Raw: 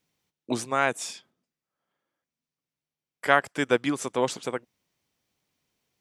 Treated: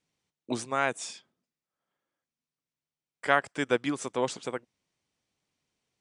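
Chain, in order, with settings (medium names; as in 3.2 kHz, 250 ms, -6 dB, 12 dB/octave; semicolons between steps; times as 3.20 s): steep low-pass 10 kHz 72 dB/octave; trim -3.5 dB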